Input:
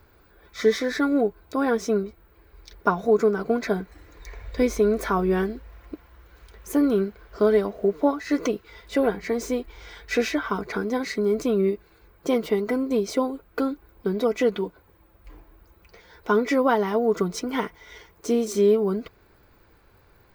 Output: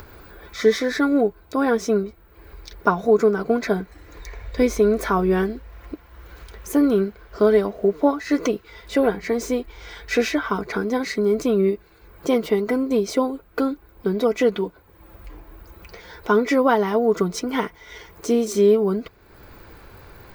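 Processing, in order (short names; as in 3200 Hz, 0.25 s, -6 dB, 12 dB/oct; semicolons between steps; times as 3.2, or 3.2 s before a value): upward compressor, threshold -36 dBFS; gain +3 dB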